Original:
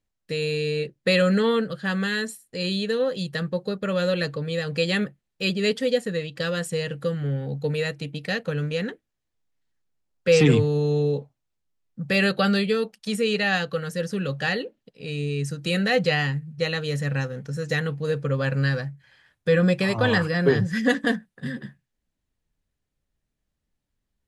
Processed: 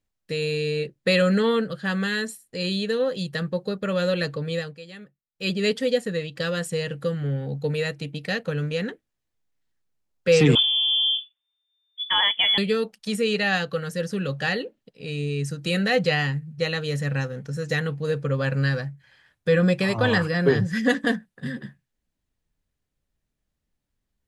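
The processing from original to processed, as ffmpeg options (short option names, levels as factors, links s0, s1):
-filter_complex "[0:a]asettb=1/sr,asplit=3[s0][s1][s2];[s0]atrim=end=10.554[s3];[s1]atrim=start=10.55:end=12.58,asetpts=PTS-STARTPTS,afade=t=in:d=0.004:c=qsin,afade=t=out:st=2.026:d=0.004:c=qsin,lowpass=f=3100:t=q:w=0.5098,lowpass=f=3100:t=q:w=0.6013,lowpass=f=3100:t=q:w=0.9,lowpass=f=3100:t=q:w=2.563,afreqshift=-3600[s4];[s2]atrim=start=12.576[s5];[s3][s4]acrossfade=d=0.004:c1=hsin:c2=qsin[s6];[s6][s5]acrossfade=d=0.004:c1=qsin:c2=hsin,asplit=3[s7][s8][s9];[s7]atrim=end=4.75,asetpts=PTS-STARTPTS,afade=t=out:st=4.57:d=0.18:silence=0.11885[s10];[s8]atrim=start=4.75:end=5.33,asetpts=PTS-STARTPTS,volume=0.119[s11];[s9]atrim=start=5.33,asetpts=PTS-STARTPTS,afade=t=in:d=0.18:silence=0.11885[s12];[s10][s11][s12]concat=n=3:v=0:a=1"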